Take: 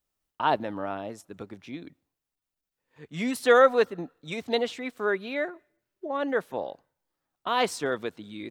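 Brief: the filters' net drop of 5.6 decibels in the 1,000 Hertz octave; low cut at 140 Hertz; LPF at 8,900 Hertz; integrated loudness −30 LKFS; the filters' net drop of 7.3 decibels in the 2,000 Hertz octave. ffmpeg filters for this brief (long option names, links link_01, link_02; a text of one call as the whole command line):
ffmpeg -i in.wav -af "highpass=140,lowpass=8900,equalizer=frequency=1000:width_type=o:gain=-5.5,equalizer=frequency=2000:width_type=o:gain=-7.5,volume=-0.5dB" out.wav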